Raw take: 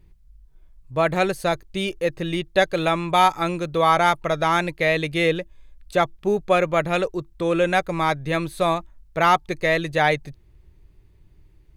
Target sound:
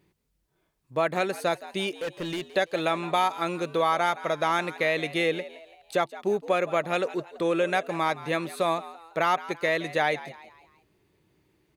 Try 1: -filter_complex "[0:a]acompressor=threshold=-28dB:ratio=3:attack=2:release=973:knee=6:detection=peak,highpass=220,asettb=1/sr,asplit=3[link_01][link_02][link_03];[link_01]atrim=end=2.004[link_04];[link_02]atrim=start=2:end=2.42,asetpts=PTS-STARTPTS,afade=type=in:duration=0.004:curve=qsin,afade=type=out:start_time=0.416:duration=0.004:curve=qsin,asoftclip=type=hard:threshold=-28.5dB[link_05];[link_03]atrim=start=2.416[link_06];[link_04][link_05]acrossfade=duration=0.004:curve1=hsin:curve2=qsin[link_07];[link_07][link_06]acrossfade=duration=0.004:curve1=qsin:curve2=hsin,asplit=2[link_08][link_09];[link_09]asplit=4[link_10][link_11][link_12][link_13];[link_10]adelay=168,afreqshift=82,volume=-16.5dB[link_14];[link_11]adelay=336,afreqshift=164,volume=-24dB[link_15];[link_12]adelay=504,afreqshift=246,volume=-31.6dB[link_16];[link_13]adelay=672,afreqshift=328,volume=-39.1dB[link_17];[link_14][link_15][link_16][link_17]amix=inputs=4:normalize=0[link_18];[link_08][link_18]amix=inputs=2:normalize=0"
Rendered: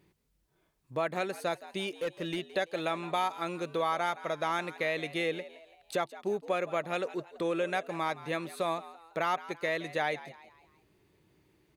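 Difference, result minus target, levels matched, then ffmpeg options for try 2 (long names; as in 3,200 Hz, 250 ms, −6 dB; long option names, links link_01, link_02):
downward compressor: peak gain reduction +6.5 dB
-filter_complex "[0:a]acompressor=threshold=-18.5dB:ratio=3:attack=2:release=973:knee=6:detection=peak,highpass=220,asettb=1/sr,asplit=3[link_01][link_02][link_03];[link_01]atrim=end=2.004[link_04];[link_02]atrim=start=2:end=2.42,asetpts=PTS-STARTPTS,afade=type=in:duration=0.004:curve=qsin,afade=type=out:start_time=0.416:duration=0.004:curve=qsin,asoftclip=type=hard:threshold=-28.5dB[link_05];[link_03]atrim=start=2.416[link_06];[link_04][link_05]acrossfade=duration=0.004:curve1=hsin:curve2=qsin[link_07];[link_07][link_06]acrossfade=duration=0.004:curve1=qsin:curve2=hsin,asplit=2[link_08][link_09];[link_09]asplit=4[link_10][link_11][link_12][link_13];[link_10]adelay=168,afreqshift=82,volume=-16.5dB[link_14];[link_11]adelay=336,afreqshift=164,volume=-24dB[link_15];[link_12]adelay=504,afreqshift=246,volume=-31.6dB[link_16];[link_13]adelay=672,afreqshift=328,volume=-39.1dB[link_17];[link_14][link_15][link_16][link_17]amix=inputs=4:normalize=0[link_18];[link_08][link_18]amix=inputs=2:normalize=0"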